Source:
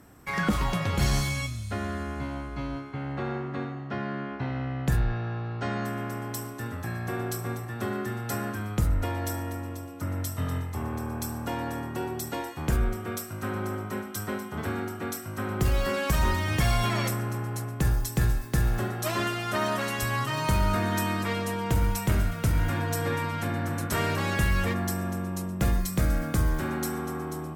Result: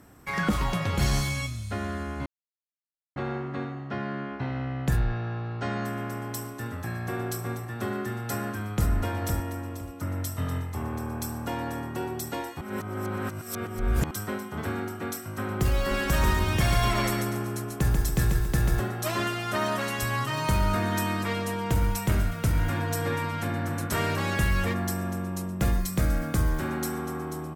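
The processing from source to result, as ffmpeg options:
ffmpeg -i in.wav -filter_complex "[0:a]asplit=2[link_01][link_02];[link_02]afade=type=in:start_time=8.26:duration=0.01,afade=type=out:start_time=8.89:duration=0.01,aecho=0:1:510|1020|1530:0.501187|0.100237|0.0200475[link_03];[link_01][link_03]amix=inputs=2:normalize=0,asettb=1/sr,asplit=3[link_04][link_05][link_06];[link_04]atrim=end=15.774[link_07];[link_05]atrim=start=15.77:end=18.8,asetpts=PTS-STARTPTS,afade=type=in:duration=0.004:curve=qsin,afade=type=out:start_time=3.026:duration=0.004:curve=qsin,aecho=1:1:140|280|420|560:0.631|0.221|0.0773|0.0271,atrim=end_sample=133623[link_08];[link_06]atrim=start=18.796[link_09];[link_07][link_08]acrossfade=duration=0.004:curve1=hsin:curve2=qsin[link_10];[link_10][link_09]acrossfade=duration=0.004:curve1=qsin:curve2=hsin,asplit=5[link_11][link_12][link_13][link_14][link_15];[link_11]atrim=end=2.26,asetpts=PTS-STARTPTS,afade=type=out:start_time=2.256:duration=0.004:curve=hsin[link_16];[link_12]atrim=start=2.26:end=3.16,asetpts=PTS-STARTPTS,volume=0[link_17];[link_13]atrim=start=3.16:end=12.612,asetpts=PTS-STARTPTS,afade=type=in:duration=0.004:curve=hsin[link_18];[link_14]atrim=start=12.608:end=14.112,asetpts=PTS-STARTPTS,areverse[link_19];[link_15]atrim=start=14.108[link_20];[link_16][link_17][link_18]concat=n=3:v=0:a=1[link_21];[link_21][link_19]acrossfade=duration=0.004:curve1=hsin:curve2=hsin[link_22];[link_22][link_20]acrossfade=duration=0.004:curve1=hsin:curve2=hsin" out.wav

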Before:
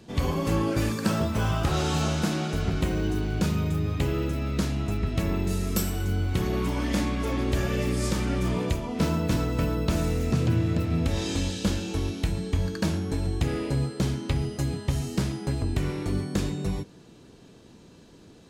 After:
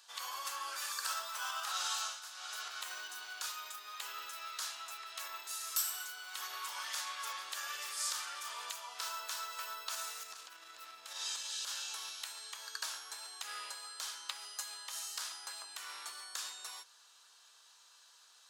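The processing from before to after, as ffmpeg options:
ffmpeg -i in.wav -filter_complex "[0:a]asettb=1/sr,asplit=3[link_01][link_02][link_03];[link_01]atrim=end=10.234[link_04];[link_02]atrim=start=10.23:end=11.66,asetpts=PTS-STARTPTS,afade=type=in:duration=0.004:curve=qsin,afade=type=out:start_time=1.426:duration=0.004:curve=qsin,equalizer=frequency=160:width=0.78:gain=10.5[link_05];[link_03]atrim=start=11.656[link_06];[link_04][link_05]acrossfade=duration=0.004:curve1=hsin:curve2=qsin[link_07];[link_07][link_06]acrossfade=duration=0.004:curve1=qsin:curve2=hsin,asplit=3[link_08][link_09][link_10];[link_08]atrim=end=2.21,asetpts=PTS-STARTPTS,afade=type=out:start_time=1.93:duration=0.28:silence=0.223872[link_11];[link_09]atrim=start=2.21:end=2.33,asetpts=PTS-STARTPTS,volume=-13dB[link_12];[link_10]atrim=start=2.33,asetpts=PTS-STARTPTS,afade=type=in:duration=0.28:silence=0.223872[link_13];[link_11][link_12][link_13]concat=n=3:v=0:a=1,equalizer=frequency=2200:width=1.6:gain=-11,alimiter=limit=-19.5dB:level=0:latency=1:release=78,highpass=frequency=1200:width=0.5412,highpass=frequency=1200:width=1.3066,volume=2.5dB" out.wav

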